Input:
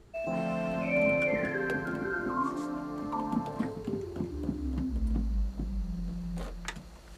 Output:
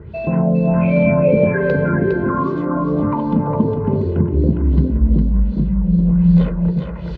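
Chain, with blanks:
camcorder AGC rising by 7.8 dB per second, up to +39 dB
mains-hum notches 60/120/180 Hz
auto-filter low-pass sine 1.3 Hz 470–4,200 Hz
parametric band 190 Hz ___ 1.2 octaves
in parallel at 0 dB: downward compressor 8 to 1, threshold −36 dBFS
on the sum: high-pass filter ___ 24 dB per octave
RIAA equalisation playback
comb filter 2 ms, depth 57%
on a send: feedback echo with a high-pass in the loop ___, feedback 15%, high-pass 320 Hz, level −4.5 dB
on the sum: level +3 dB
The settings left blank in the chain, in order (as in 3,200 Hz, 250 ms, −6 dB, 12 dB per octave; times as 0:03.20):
+9.5 dB, 72 Hz, 408 ms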